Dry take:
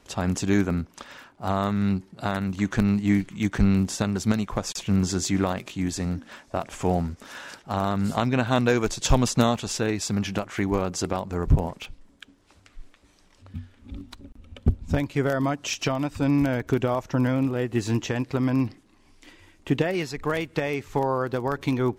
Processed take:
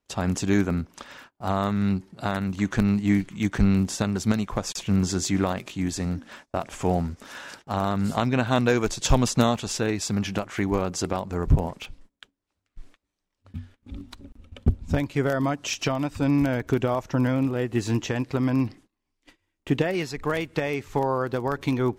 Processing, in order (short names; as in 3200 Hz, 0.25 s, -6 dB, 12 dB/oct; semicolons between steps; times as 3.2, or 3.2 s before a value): gate -47 dBFS, range -24 dB